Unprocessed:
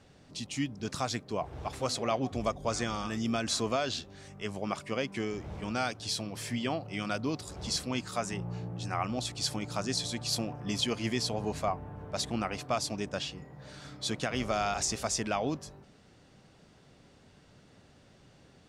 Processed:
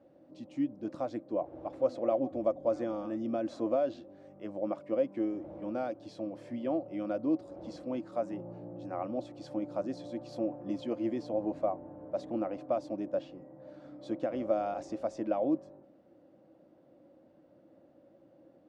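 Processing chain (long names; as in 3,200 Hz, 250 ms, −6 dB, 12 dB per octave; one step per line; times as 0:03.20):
pair of resonant band-passes 420 Hz, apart 0.72 octaves
level +8.5 dB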